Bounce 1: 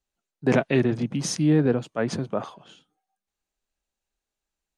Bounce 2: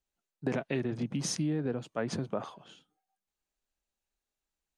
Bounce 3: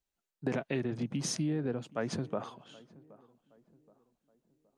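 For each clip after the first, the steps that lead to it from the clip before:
downward compressor 6 to 1, threshold −24 dBFS, peak gain reduction 9.5 dB; level −4 dB
tape delay 772 ms, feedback 46%, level −20 dB, low-pass 1,200 Hz; level −1 dB

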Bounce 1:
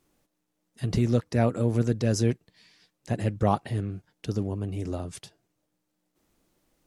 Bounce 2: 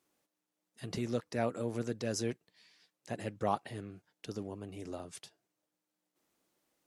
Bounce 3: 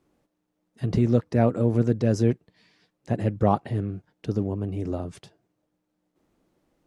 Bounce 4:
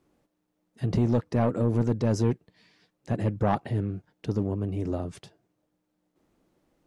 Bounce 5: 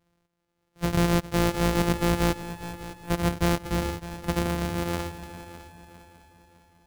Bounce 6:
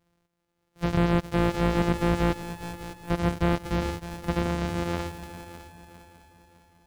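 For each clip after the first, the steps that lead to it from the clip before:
high-pass filter 400 Hz 6 dB per octave; level −5.5 dB
spectral tilt −3.5 dB per octave; level +7.5 dB
soft clipping −16 dBFS, distortion −12 dB
samples sorted by size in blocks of 256 samples; automatic gain control gain up to 4 dB; echo machine with several playback heads 202 ms, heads second and third, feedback 47%, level −15 dB; level −3 dB
slew-rate limiting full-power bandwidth 270 Hz

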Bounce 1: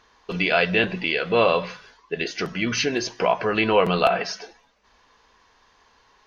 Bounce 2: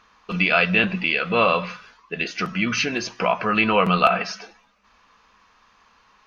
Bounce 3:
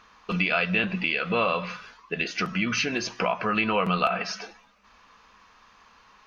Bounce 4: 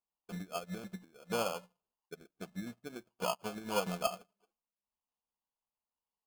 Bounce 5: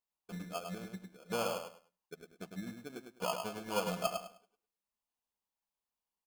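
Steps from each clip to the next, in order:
thirty-one-band graphic EQ 200 Hz +9 dB, 400 Hz −5 dB, 1,250 Hz +10 dB, 2,500 Hz +7 dB; level −1.5 dB
downward compressor 2 to 1, threshold −28 dBFS, peak gain reduction 9.5 dB; level +1.5 dB
transistor ladder low-pass 1,100 Hz, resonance 25%; decimation without filtering 23×; expander for the loud parts 2.5 to 1, over −50 dBFS
repeating echo 103 ms, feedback 23%, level −6 dB; level −1.5 dB

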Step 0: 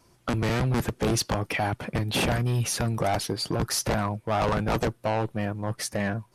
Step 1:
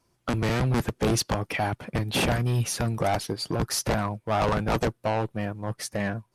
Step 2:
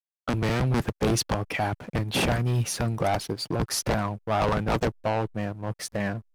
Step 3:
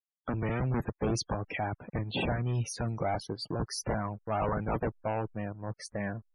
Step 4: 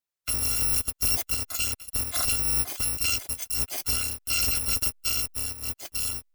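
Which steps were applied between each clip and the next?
expander for the loud parts 1.5 to 1, over −44 dBFS; level +1.5 dB
slack as between gear wheels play −41 dBFS
spectral peaks only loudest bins 64; level −6 dB
samples in bit-reversed order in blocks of 256 samples; level +5 dB

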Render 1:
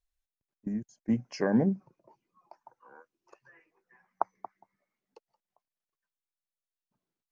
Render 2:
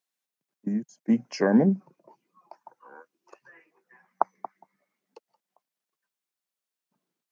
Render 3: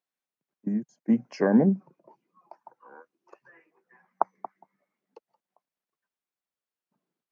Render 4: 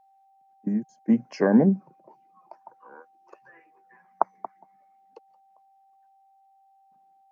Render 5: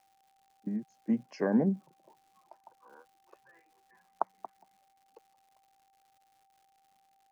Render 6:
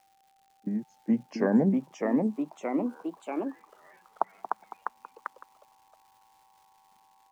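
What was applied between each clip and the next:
Butterworth high-pass 150 Hz 36 dB per octave; level +5.5 dB
high-shelf EQ 3,100 Hz −11.5 dB
steady tone 780 Hz −60 dBFS; level +2 dB
surface crackle 200 per second −48 dBFS; level −8.5 dB
delay with pitch and tempo change per echo 760 ms, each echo +2 semitones, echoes 3; level +3.5 dB

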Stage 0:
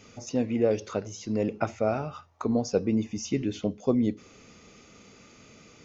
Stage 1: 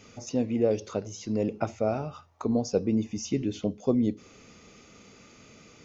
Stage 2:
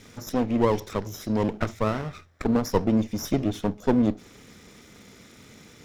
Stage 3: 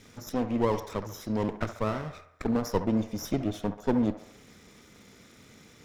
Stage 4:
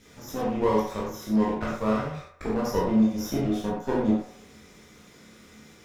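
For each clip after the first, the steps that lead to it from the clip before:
dynamic equaliser 1,700 Hz, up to −6 dB, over −47 dBFS, Q 1
lower of the sound and its delayed copy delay 0.54 ms; level +4.5 dB
delay with a band-pass on its return 68 ms, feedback 51%, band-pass 1,000 Hz, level −9 dB; level −4.5 dB
convolution reverb, pre-delay 7 ms, DRR −6 dB; level −4 dB

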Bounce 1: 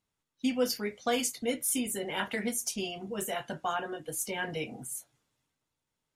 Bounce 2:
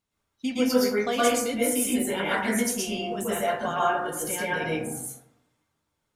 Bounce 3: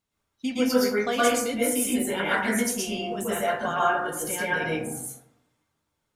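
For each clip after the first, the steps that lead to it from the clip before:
dense smooth reverb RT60 0.75 s, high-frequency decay 0.35×, pre-delay 105 ms, DRR −7 dB
dynamic equaliser 1,500 Hz, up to +4 dB, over −39 dBFS, Q 2.6

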